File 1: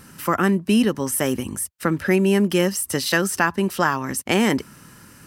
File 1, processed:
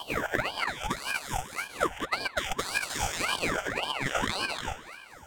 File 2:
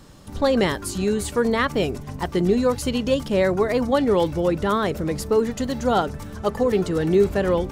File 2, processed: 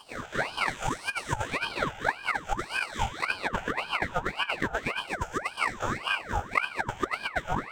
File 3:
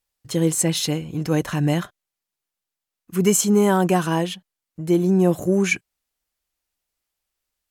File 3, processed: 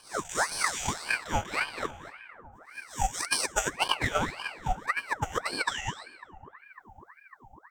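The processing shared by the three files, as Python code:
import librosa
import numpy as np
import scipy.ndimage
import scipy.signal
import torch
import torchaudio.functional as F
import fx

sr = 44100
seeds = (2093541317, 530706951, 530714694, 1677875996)

p1 = fx.spec_blur(x, sr, span_ms=502.0)
p2 = fx.ripple_eq(p1, sr, per_octave=0.73, db=17)
p3 = fx.filter_lfo_highpass(p2, sr, shape='sine', hz=4.2, low_hz=430.0, high_hz=1700.0, q=1.9)
p4 = fx.over_compress(p3, sr, threshold_db=-24.0, ratio=-0.5)
p5 = fx.transient(p4, sr, attack_db=10, sustain_db=-9)
p6 = p5 + fx.echo_bbd(p5, sr, ms=550, stages=2048, feedback_pct=82, wet_db=-19.5, dry=0)
p7 = fx.rev_plate(p6, sr, seeds[0], rt60_s=3.1, hf_ratio=0.25, predelay_ms=0, drr_db=15.0)
p8 = fx.ring_lfo(p7, sr, carrier_hz=1200.0, swing_pct=70, hz=1.8)
y = p8 * librosa.db_to_amplitude(-4.5)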